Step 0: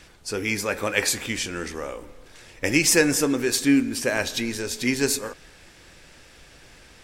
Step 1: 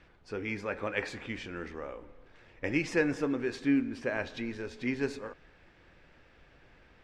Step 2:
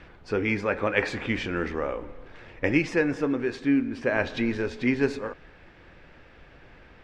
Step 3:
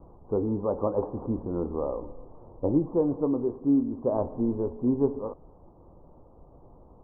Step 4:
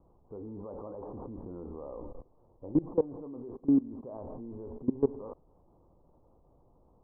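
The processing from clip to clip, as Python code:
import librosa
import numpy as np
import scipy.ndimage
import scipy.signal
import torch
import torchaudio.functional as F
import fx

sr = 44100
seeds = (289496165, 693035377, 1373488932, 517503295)

y1 = scipy.signal.sosfilt(scipy.signal.butter(2, 2300.0, 'lowpass', fs=sr, output='sos'), x)
y1 = y1 * 10.0 ** (-8.0 / 20.0)
y2 = fx.high_shelf(y1, sr, hz=6200.0, db=-10.0)
y2 = fx.rider(y2, sr, range_db=4, speed_s=0.5)
y2 = y2 * 10.0 ** (7.5 / 20.0)
y3 = scipy.signal.sosfilt(scipy.signal.butter(12, 1100.0, 'lowpass', fs=sr, output='sos'), y2)
y4 = fx.level_steps(y3, sr, step_db=21)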